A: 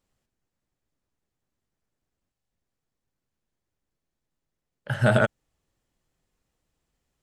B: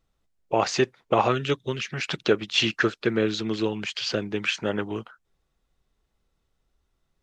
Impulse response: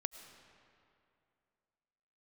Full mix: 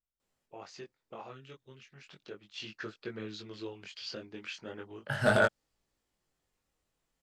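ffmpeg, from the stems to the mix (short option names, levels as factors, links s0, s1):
-filter_complex "[0:a]lowshelf=f=180:g=-9,adelay=200,volume=1.06[s0];[1:a]volume=0.211,afade=t=in:st=2.42:d=0.61:silence=0.375837[s1];[s0][s1]amix=inputs=2:normalize=0,adynamicequalizer=threshold=0.00112:dfrequency=4700:dqfactor=3.8:tfrequency=4700:tqfactor=3.8:attack=5:release=100:ratio=0.375:range=3.5:mode=boostabove:tftype=bell,asoftclip=type=hard:threshold=0.251,flanger=delay=19:depth=3.6:speed=0.34"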